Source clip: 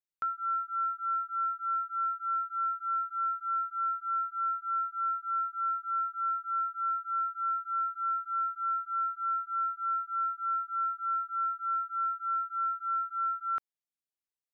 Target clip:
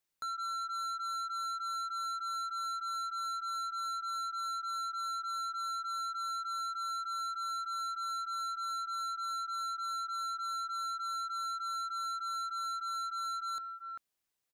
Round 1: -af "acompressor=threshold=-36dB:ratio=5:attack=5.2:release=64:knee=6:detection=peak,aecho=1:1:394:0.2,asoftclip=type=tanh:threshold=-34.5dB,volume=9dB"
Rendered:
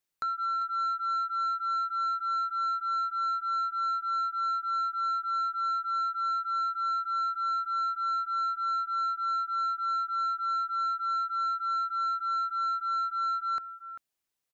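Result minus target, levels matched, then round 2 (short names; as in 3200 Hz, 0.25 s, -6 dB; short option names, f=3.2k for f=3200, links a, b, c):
soft clip: distortion -10 dB
-af "acompressor=threshold=-36dB:ratio=5:attack=5.2:release=64:knee=6:detection=peak,aecho=1:1:394:0.2,asoftclip=type=tanh:threshold=-45dB,volume=9dB"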